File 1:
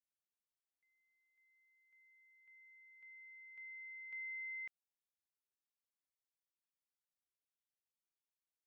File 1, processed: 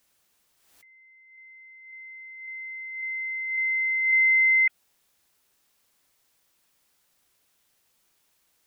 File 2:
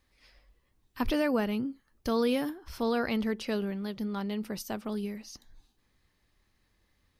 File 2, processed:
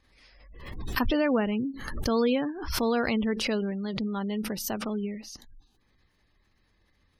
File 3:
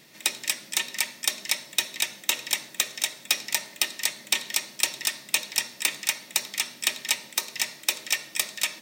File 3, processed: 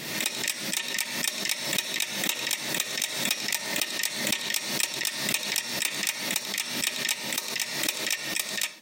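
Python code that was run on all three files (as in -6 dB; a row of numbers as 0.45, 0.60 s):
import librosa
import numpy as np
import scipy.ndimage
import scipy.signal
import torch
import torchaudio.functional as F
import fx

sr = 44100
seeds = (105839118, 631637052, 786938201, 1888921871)

y = fx.spec_gate(x, sr, threshold_db=-30, keep='strong')
y = fx.pre_swell(y, sr, db_per_s=49.0)
y = y * 10.0 ** (-30 / 20.0) / np.sqrt(np.mean(np.square(y)))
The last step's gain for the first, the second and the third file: +26.0, +2.5, -4.5 dB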